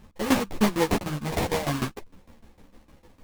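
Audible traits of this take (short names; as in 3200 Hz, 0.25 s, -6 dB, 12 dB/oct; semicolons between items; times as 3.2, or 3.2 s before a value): a buzz of ramps at a fixed pitch in blocks of 8 samples; tremolo saw down 6.6 Hz, depth 90%; aliases and images of a low sample rate 1400 Hz, jitter 20%; a shimmering, thickened sound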